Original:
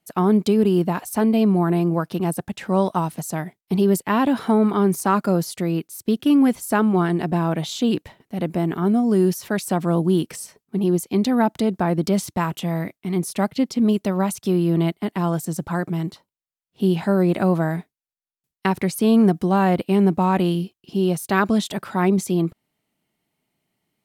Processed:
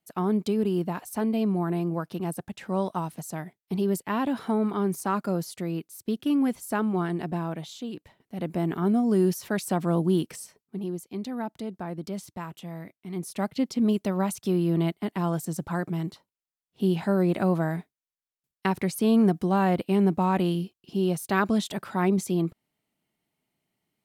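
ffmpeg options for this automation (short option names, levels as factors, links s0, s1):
-af "volume=4.47,afade=t=out:st=7.28:d=0.64:silence=0.375837,afade=t=in:st=7.92:d=0.76:silence=0.251189,afade=t=out:st=10.15:d=0.8:silence=0.334965,afade=t=in:st=12.98:d=0.69:silence=0.354813"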